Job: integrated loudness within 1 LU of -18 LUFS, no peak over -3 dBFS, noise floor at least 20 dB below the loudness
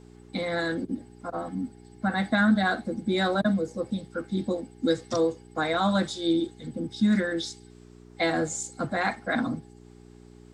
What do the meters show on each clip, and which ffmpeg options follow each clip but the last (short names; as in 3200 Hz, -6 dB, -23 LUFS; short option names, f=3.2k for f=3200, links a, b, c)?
hum 60 Hz; harmonics up to 420 Hz; hum level -48 dBFS; loudness -28.0 LUFS; peak -11.5 dBFS; loudness target -18.0 LUFS
-> -af "bandreject=f=60:t=h:w=4,bandreject=f=120:t=h:w=4,bandreject=f=180:t=h:w=4,bandreject=f=240:t=h:w=4,bandreject=f=300:t=h:w=4,bandreject=f=360:t=h:w=4,bandreject=f=420:t=h:w=4"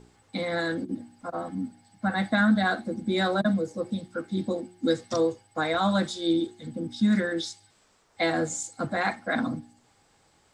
hum none; loudness -28.0 LUFS; peak -11.0 dBFS; loudness target -18.0 LUFS
-> -af "volume=10dB,alimiter=limit=-3dB:level=0:latency=1"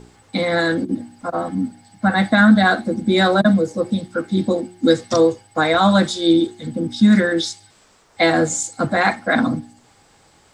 loudness -18.0 LUFS; peak -3.0 dBFS; noise floor -54 dBFS